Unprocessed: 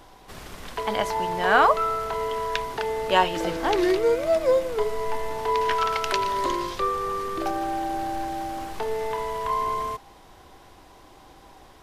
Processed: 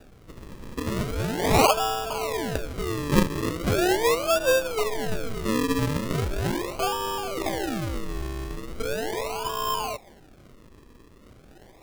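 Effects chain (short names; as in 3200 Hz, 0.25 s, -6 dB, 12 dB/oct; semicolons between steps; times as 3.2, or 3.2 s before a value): decimation with a swept rate 41×, swing 100% 0.39 Hz; gain -1 dB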